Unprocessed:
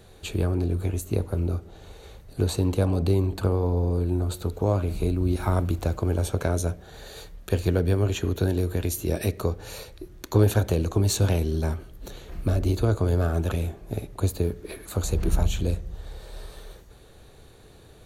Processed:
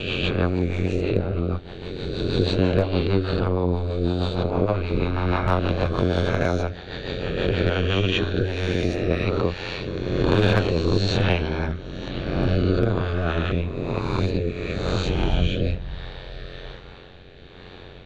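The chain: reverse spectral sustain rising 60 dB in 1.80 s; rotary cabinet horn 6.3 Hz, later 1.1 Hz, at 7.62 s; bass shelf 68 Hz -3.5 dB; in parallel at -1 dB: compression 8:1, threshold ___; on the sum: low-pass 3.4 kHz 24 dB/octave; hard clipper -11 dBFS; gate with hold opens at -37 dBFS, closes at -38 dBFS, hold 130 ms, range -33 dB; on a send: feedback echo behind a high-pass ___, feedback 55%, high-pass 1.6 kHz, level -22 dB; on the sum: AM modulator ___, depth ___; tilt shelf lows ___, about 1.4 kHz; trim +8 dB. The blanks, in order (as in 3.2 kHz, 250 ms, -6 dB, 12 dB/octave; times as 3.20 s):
-33 dBFS, 73 ms, 90 Hz, 70%, -5 dB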